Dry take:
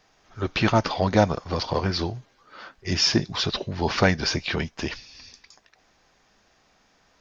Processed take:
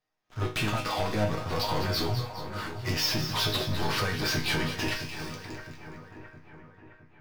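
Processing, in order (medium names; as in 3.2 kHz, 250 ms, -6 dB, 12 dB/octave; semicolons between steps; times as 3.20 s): median filter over 5 samples; compression 6:1, threshold -24 dBFS, peak gain reduction 11.5 dB; waveshaping leveller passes 5; chord resonator G#2 minor, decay 0.33 s; two-band feedback delay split 1.9 kHz, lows 664 ms, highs 207 ms, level -9.5 dB; trim +1 dB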